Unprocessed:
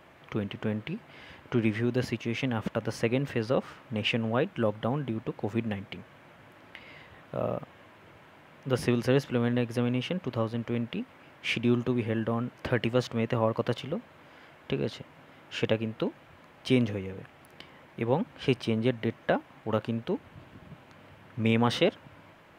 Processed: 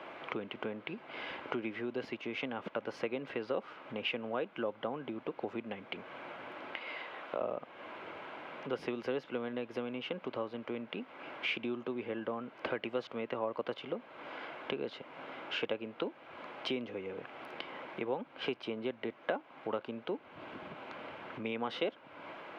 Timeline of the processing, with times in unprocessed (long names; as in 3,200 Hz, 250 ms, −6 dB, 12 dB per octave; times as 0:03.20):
0:06.78–0:07.41: high-pass filter 430 Hz 6 dB per octave
whole clip: downward compressor 3 to 1, threshold −45 dBFS; three-way crossover with the lows and the highs turned down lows −21 dB, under 260 Hz, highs −23 dB, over 4,000 Hz; notch filter 1,800 Hz, Q 8.9; level +9.5 dB